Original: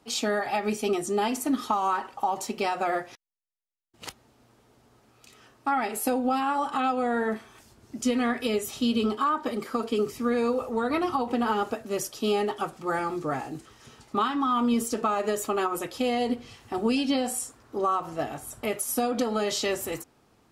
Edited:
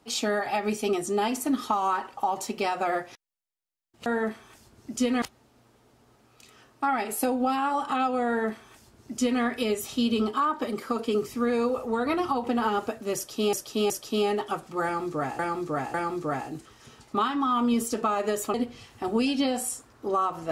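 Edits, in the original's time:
7.11–8.27 copy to 4.06
12–12.37 loop, 3 plays
12.94–13.49 loop, 3 plays
15.54–16.24 cut

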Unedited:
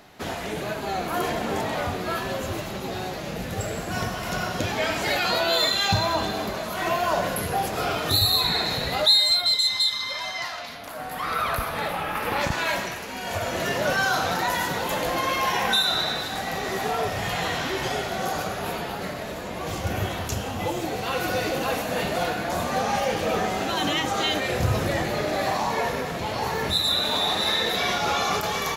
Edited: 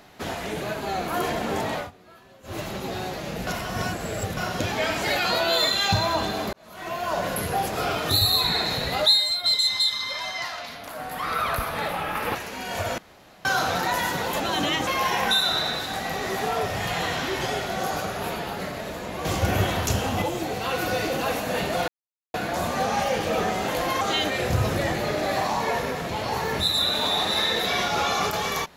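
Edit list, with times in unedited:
1.74–2.6 dip -22.5 dB, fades 0.17 s
3.47–4.37 reverse
6.53–7.38 fade in
9.09–9.44 fade out quadratic, to -6 dB
12.35–12.91 cut
13.54–14.01 room tone
14.96–15.29 swap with 23.64–24.11
19.67–20.64 gain +4.5 dB
22.3 insert silence 0.46 s

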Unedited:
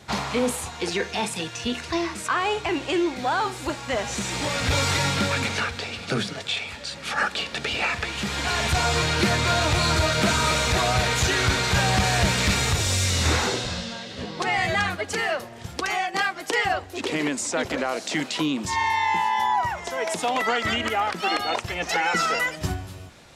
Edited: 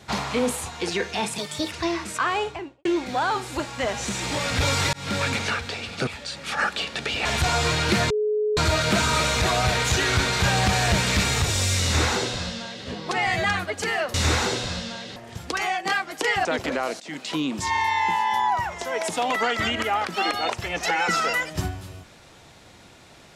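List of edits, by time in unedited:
1.38–1.82 speed 129%
2.4–2.95 studio fade out
5.03–5.31 fade in
6.17–6.66 cut
7.84–8.56 cut
9.41–9.88 bleep 424 Hz -20 dBFS
13.15–14.17 copy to 15.45
16.74–17.51 cut
18.06–18.71 fade in equal-power, from -19 dB

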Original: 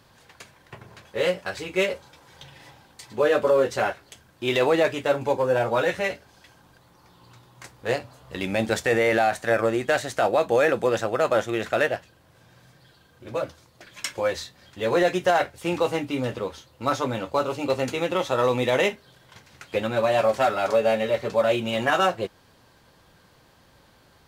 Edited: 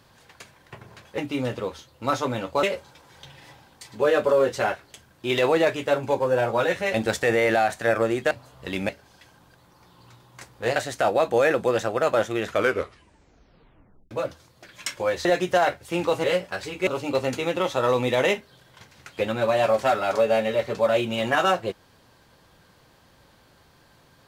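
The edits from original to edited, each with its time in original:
1.18–1.81 swap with 15.97–17.42
6.12–7.99 swap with 8.57–9.94
11.6 tape stop 1.69 s
14.43–14.98 cut

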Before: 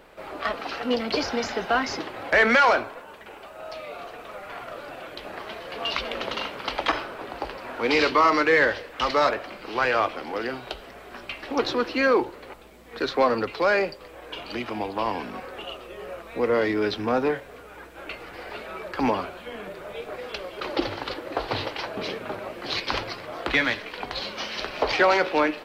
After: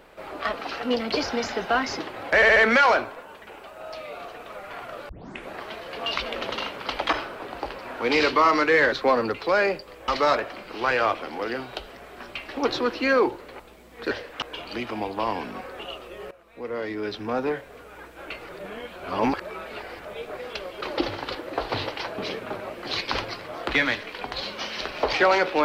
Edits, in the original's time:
2.35 stutter 0.07 s, 4 plays
4.88 tape start 0.42 s
8.71–9.02 swap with 13.05–14.21
16.1–17.76 fade in, from -17.5 dB
18.28–19.84 reverse

